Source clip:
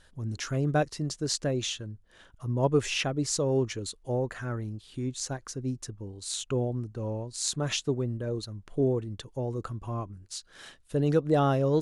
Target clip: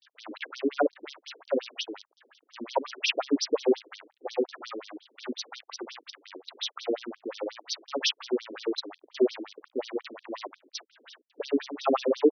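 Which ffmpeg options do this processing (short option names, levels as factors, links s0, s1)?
-af "asetrate=42336,aresample=44100,acrusher=bits=7:dc=4:mix=0:aa=0.000001,afftfilt=real='re*between(b*sr/1024,330*pow(4500/330,0.5+0.5*sin(2*PI*5.6*pts/sr))/1.41,330*pow(4500/330,0.5+0.5*sin(2*PI*5.6*pts/sr))*1.41)':imag='im*between(b*sr/1024,330*pow(4500/330,0.5+0.5*sin(2*PI*5.6*pts/sr))/1.41,330*pow(4500/330,0.5+0.5*sin(2*PI*5.6*pts/sr))*1.41)':win_size=1024:overlap=0.75,volume=2.51"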